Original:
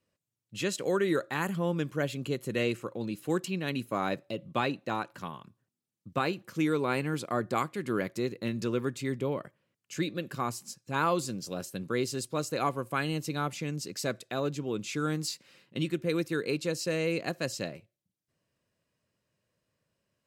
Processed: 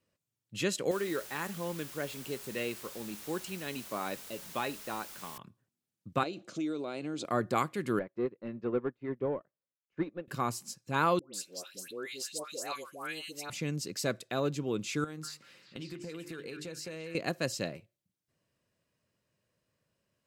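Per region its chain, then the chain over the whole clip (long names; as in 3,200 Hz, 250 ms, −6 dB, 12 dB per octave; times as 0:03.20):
0:00.91–0:05.38: low-shelf EQ 140 Hz −11.5 dB + tuned comb filter 210 Hz, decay 0.26 s, mix 50% + bit-depth reduction 8 bits, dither triangular
0:06.23–0:07.25: downward compressor 8 to 1, threshold −35 dBFS + loudspeaker in its box 180–8,200 Hz, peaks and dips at 310 Hz +7 dB, 650 Hz +9 dB, 980 Hz −6 dB, 1,800 Hz −8 dB, 3,800 Hz +6 dB, 6,700 Hz +5 dB
0:07.99–0:10.28: mid-hump overdrive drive 18 dB, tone 1,100 Hz, clips at −16.5 dBFS + head-to-tape spacing loss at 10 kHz 36 dB + expander for the loud parts 2.5 to 1, over −45 dBFS
0:11.19–0:13.50: high-pass filter 570 Hz + parametric band 1,000 Hz −10 dB 1.9 octaves + all-pass dispersion highs, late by 149 ms, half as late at 1,200 Hz
0:15.04–0:17.15: mains-hum notches 50/100/150/200/250/300/350/400/450 Hz + downward compressor 12 to 1, threshold −38 dBFS + echo through a band-pass that steps 192 ms, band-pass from 1,500 Hz, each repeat 0.7 octaves, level −3 dB
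whole clip: no processing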